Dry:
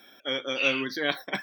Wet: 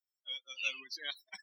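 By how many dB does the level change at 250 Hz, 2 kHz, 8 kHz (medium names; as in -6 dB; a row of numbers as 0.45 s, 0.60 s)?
-32.5 dB, -12.5 dB, -4.5 dB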